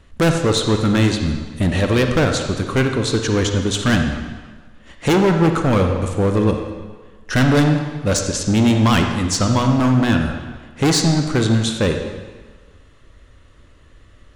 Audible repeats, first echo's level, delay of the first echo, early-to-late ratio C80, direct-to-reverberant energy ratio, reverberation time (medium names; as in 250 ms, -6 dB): no echo, no echo, no echo, 6.5 dB, 4.0 dB, 1.5 s